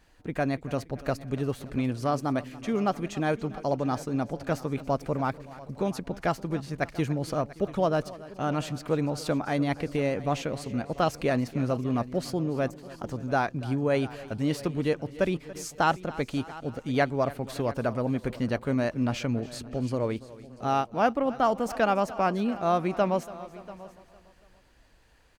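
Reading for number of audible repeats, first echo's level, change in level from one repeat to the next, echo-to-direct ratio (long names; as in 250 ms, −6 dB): 5, −18.5 dB, repeats not evenly spaced, −14.5 dB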